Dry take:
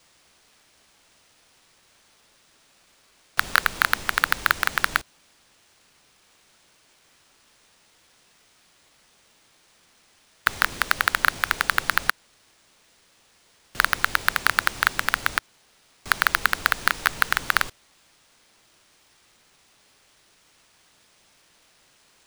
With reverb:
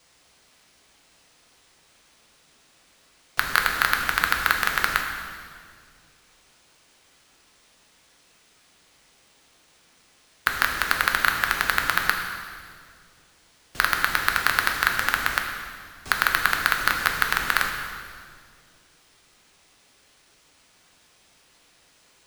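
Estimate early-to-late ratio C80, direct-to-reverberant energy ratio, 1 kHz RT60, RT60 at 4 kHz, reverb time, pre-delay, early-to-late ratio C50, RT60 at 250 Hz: 6.0 dB, 2.0 dB, 1.8 s, 1.8 s, 2.0 s, 3 ms, 4.5 dB, 2.5 s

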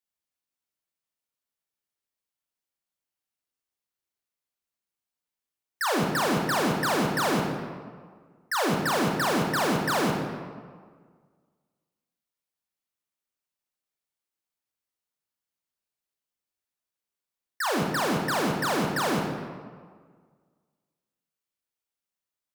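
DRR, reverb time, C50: 1.0 dB, 1.7 s, 3.0 dB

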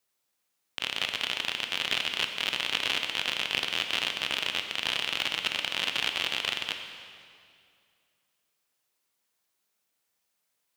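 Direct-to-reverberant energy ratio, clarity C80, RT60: 5.0 dB, 7.0 dB, 2.3 s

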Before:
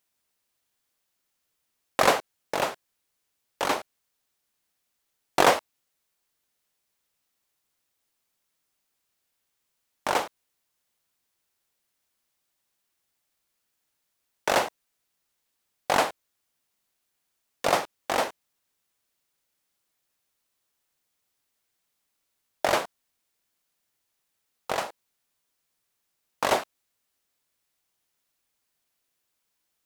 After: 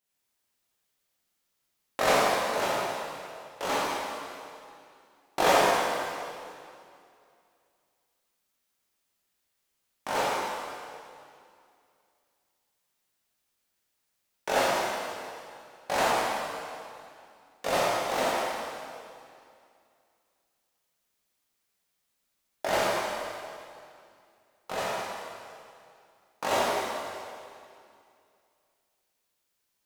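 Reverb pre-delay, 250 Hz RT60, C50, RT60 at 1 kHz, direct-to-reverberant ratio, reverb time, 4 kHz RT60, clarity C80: 7 ms, 2.5 s, -4.5 dB, 2.4 s, -9.0 dB, 2.4 s, 2.2 s, -2.5 dB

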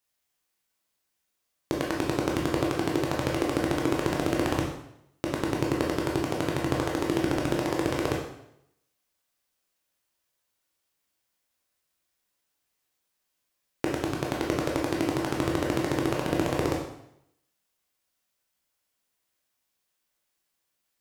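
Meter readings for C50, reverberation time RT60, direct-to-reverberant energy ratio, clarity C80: 3.5 dB, 0.75 s, -2.0 dB, 7.0 dB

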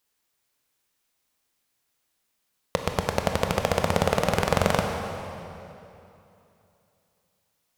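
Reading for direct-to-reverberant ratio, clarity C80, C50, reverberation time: 3.0 dB, 4.5 dB, 4.0 dB, 2.9 s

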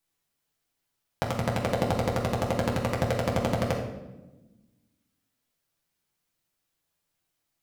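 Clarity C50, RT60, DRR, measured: 5.5 dB, 1.1 s, -2.0 dB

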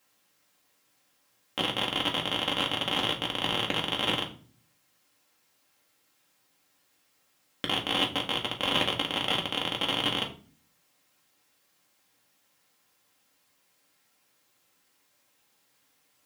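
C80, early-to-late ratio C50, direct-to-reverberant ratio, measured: 17.0 dB, 12.5 dB, -1.0 dB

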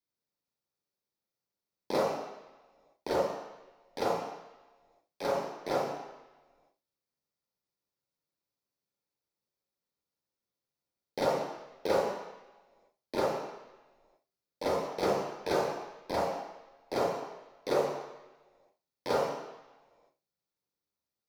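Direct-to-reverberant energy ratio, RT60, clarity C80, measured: -5.5 dB, 1.1 s, 3.0 dB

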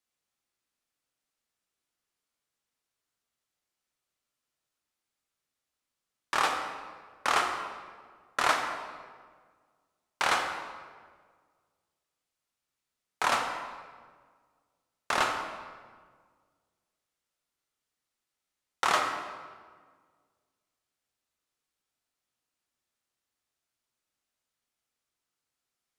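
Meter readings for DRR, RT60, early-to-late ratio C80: 2.5 dB, 1.6 s, 6.0 dB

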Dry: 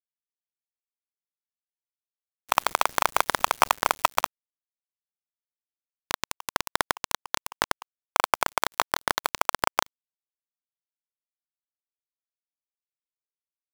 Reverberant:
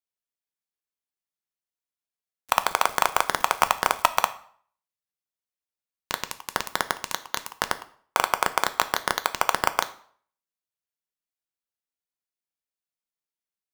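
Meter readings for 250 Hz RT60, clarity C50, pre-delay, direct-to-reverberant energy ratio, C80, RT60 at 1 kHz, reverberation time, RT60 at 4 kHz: 0.50 s, 16.0 dB, 3 ms, 10.0 dB, 19.5 dB, 0.55 s, 0.55 s, 0.45 s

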